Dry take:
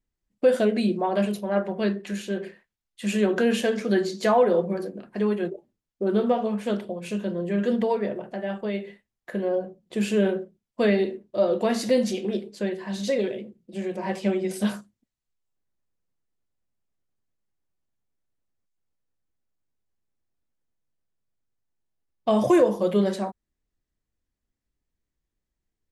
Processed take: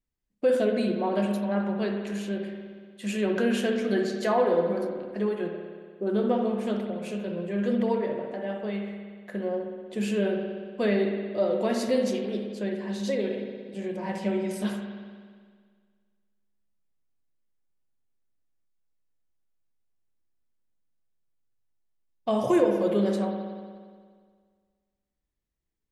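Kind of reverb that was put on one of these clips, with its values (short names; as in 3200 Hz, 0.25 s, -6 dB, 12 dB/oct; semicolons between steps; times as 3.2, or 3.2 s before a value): spring tank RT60 1.8 s, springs 59 ms, chirp 30 ms, DRR 3.5 dB; gain -4.5 dB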